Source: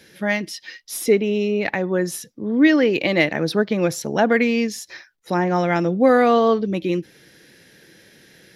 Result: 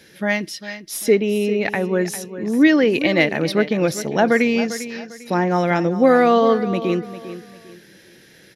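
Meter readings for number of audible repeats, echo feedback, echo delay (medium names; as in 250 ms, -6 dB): 3, 31%, 399 ms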